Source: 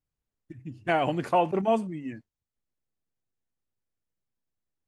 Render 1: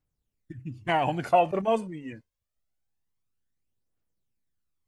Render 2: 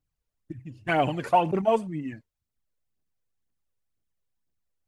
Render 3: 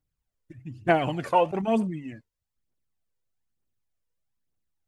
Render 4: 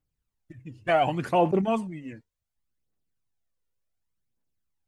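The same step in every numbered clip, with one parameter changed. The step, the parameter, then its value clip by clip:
phaser, rate: 0.25 Hz, 2 Hz, 1.1 Hz, 0.68 Hz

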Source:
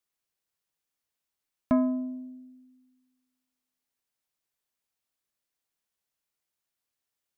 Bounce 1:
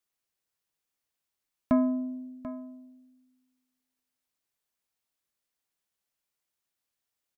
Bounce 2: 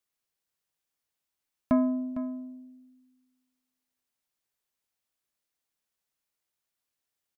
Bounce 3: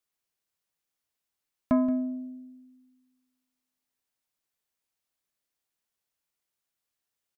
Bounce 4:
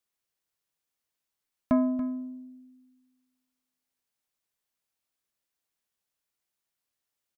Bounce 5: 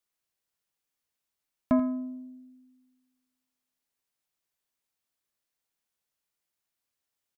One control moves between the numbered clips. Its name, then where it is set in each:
delay, time: 739 ms, 455 ms, 176 ms, 283 ms, 84 ms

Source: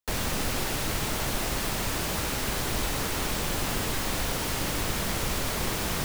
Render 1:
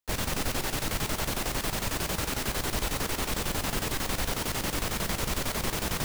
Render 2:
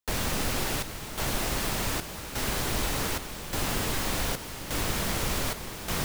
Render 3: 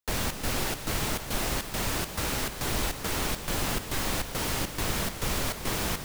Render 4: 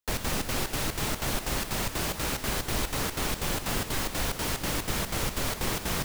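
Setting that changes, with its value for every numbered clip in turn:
square tremolo, rate: 11 Hz, 0.85 Hz, 2.3 Hz, 4.1 Hz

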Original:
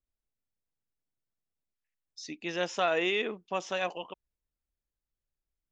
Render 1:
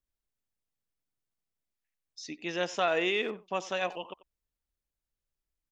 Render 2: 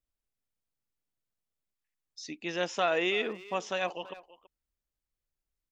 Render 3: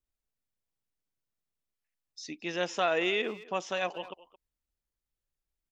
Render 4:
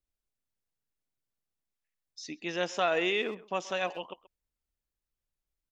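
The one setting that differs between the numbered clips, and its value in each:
speakerphone echo, time: 90 ms, 330 ms, 220 ms, 130 ms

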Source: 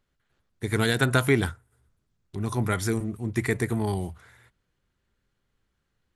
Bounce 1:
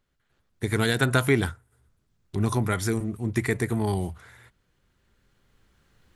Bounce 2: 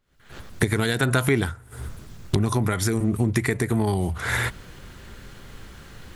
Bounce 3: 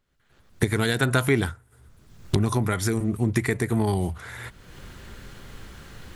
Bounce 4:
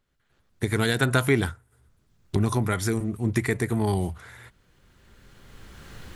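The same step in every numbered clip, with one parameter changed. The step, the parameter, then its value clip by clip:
recorder AGC, rising by: 5.8 dB/s, 90 dB/s, 36 dB/s, 15 dB/s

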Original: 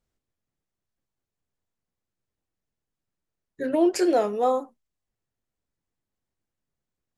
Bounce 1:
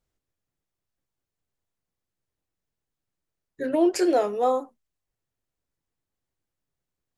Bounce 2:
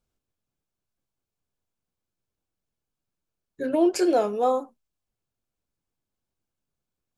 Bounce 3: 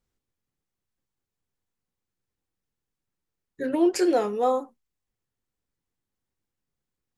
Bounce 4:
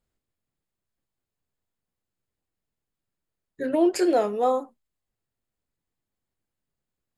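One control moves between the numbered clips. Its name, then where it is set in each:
band-stop, frequency: 220 Hz, 1.9 kHz, 640 Hz, 5.8 kHz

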